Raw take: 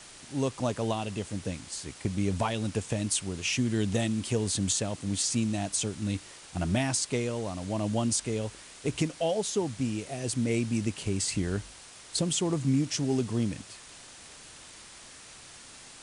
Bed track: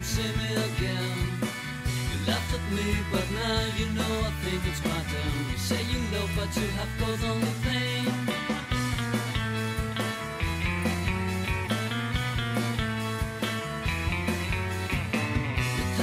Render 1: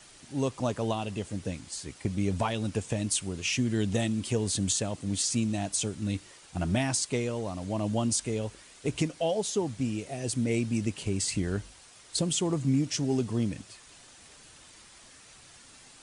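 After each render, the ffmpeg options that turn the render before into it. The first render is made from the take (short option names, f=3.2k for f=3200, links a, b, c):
-af "afftdn=nr=6:nf=-49"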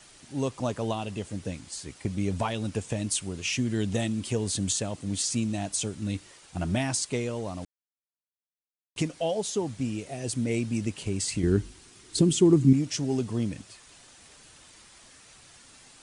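-filter_complex "[0:a]asettb=1/sr,asplit=3[a][b][c];[a]atrim=end=11.434[d];[b]atrim=start=11.43:end=12.73,asetpts=PTS-STARTPTS,afade=t=in:d=0.004:c=qsin,afade=t=out:st=1.296:d=0.004:c=qsin,lowshelf=f=450:t=q:w=3:g=6.5[e];[c]atrim=start=12.726[f];[d][e]acrossfade=d=0.004:c1=hsin:c2=qsin[g];[g][f]acrossfade=d=0.004:c1=qsin:c2=hsin,asplit=3[h][i][j];[h]atrim=end=7.65,asetpts=PTS-STARTPTS,afade=t=out:st=7.646:d=0.004:c=hsin[k];[i]atrim=start=7.65:end=8.96,asetpts=PTS-STARTPTS,volume=0[l];[j]atrim=start=8.96,asetpts=PTS-STARTPTS,afade=t=in:d=0.004:c=hsin[m];[k][l][m]concat=n=3:v=0:a=1"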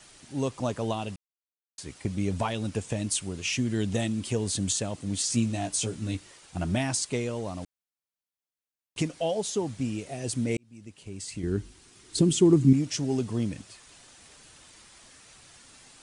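-filter_complex "[0:a]asettb=1/sr,asplit=3[a][b][c];[a]atrim=end=5.284[d];[b]atrim=start=5.28:end=6.15,asetpts=PTS-STARTPTS,afade=t=in:d=0.004:c=qsin,afade=t=out:st=0.866:d=0.004:c=qsin,asplit=2[e][f];[f]adelay=17,volume=-5dB[g];[e][g]amix=inputs=2:normalize=0,atrim=end_sample=38367[h];[c]atrim=start=6.146[i];[d][h]acrossfade=d=0.004:c1=hsin:c2=qsin[j];[j][i]acrossfade=d=0.004:c1=qsin:c2=hsin,asplit=4[k][l][m][n];[k]atrim=end=1.16,asetpts=PTS-STARTPTS,afade=t=out:st=1.156:d=0.004:c=hsin[o];[l]atrim=start=1.16:end=1.78,asetpts=PTS-STARTPTS,volume=0[p];[m]atrim=start=1.78:end=10.57,asetpts=PTS-STARTPTS,afade=t=in:d=0.004:c=hsin,afade=t=out:st=8.786:d=0.004:c=hsin[q];[n]atrim=start=10.57,asetpts=PTS-STARTPTS,afade=t=in:d=1.76[r];[o][p][q][r]concat=n=4:v=0:a=1"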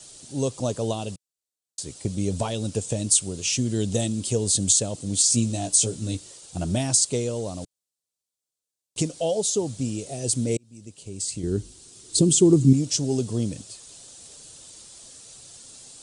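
-af "equalizer=f=125:t=o:w=1:g=4,equalizer=f=500:t=o:w=1:g=6,equalizer=f=1k:t=o:w=1:g=-3,equalizer=f=2k:t=o:w=1:g=-8,equalizer=f=4k:t=o:w=1:g=5,equalizer=f=8k:t=o:w=1:g=11"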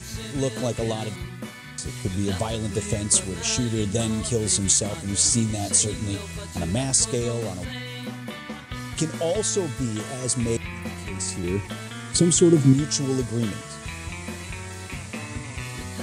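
-filter_complex "[1:a]volume=-6dB[a];[0:a][a]amix=inputs=2:normalize=0"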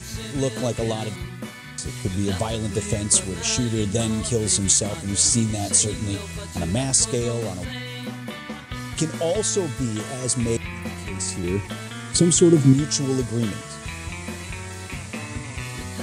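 -af "volume=1.5dB"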